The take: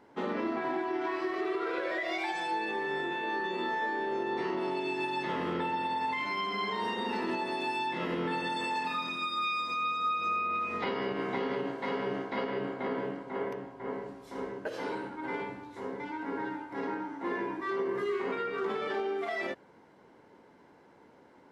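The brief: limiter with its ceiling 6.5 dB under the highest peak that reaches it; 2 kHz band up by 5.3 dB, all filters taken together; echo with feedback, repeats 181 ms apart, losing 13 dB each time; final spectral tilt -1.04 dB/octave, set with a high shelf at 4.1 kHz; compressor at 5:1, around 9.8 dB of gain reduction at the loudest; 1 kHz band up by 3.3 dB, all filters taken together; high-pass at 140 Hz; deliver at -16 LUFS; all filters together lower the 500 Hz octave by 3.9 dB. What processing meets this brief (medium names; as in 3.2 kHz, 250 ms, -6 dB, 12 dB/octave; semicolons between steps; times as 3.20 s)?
high-pass 140 Hz; peaking EQ 500 Hz -6.5 dB; peaking EQ 1 kHz +4 dB; peaking EQ 2 kHz +4 dB; treble shelf 4.1 kHz +7.5 dB; compression 5:1, threshold -35 dBFS; peak limiter -31 dBFS; feedback delay 181 ms, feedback 22%, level -13 dB; trim +22.5 dB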